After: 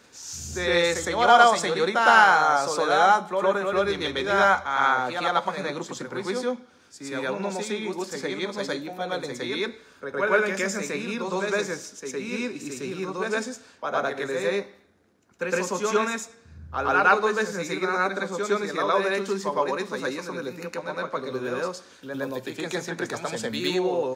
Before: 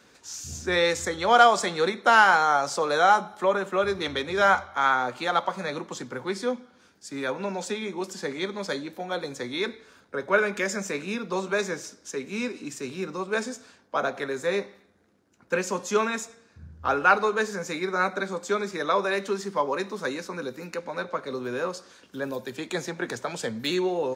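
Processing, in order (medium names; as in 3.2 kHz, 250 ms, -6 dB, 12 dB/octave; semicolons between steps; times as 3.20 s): reverse echo 111 ms -4 dB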